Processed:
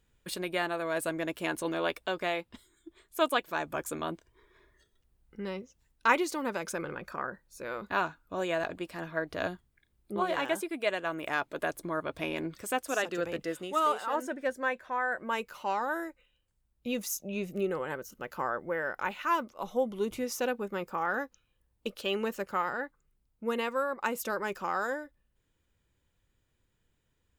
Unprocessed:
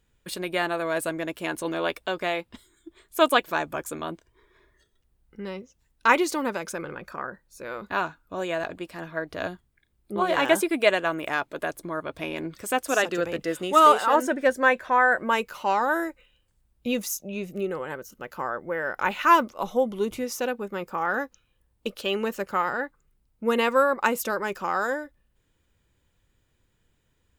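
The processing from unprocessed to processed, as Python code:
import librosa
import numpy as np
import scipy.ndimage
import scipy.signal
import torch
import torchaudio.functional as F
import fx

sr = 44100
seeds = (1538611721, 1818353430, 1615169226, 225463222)

y = fx.rider(x, sr, range_db=5, speed_s=0.5)
y = y * 10.0 ** (-7.0 / 20.0)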